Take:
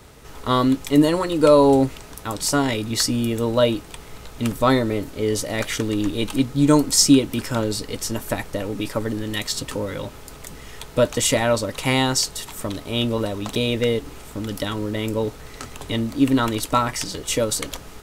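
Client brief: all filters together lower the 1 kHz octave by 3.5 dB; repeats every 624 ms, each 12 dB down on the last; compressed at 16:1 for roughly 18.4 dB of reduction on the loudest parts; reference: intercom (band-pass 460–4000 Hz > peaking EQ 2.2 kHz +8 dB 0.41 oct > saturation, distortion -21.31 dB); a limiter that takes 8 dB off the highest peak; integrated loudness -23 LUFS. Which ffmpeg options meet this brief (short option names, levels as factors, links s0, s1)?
-af "equalizer=f=1000:t=o:g=-4.5,acompressor=threshold=0.0398:ratio=16,alimiter=limit=0.0668:level=0:latency=1,highpass=460,lowpass=4000,equalizer=f=2200:t=o:w=0.41:g=8,aecho=1:1:624|1248|1872:0.251|0.0628|0.0157,asoftclip=threshold=0.0531,volume=6.31"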